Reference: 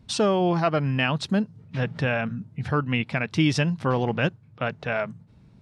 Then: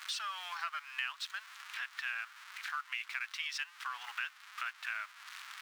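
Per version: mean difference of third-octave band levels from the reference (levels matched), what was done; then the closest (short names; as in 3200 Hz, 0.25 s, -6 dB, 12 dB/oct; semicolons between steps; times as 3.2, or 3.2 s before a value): 23.5 dB: zero-crossing step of -32 dBFS; steep high-pass 1200 Hz 36 dB/oct; high shelf 5700 Hz -10.5 dB; compressor 2.5:1, threshold -44 dBFS, peak gain reduction 15 dB; gain +3 dB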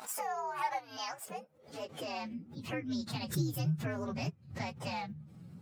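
11.0 dB: inharmonic rescaling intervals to 128%; compressor 4:1, threshold -41 dBFS, peak gain reduction 19 dB; high-pass sweep 820 Hz -> 150 Hz, 0.93–3.27; backwards sustainer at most 130 dB/s; gain +2.5 dB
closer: second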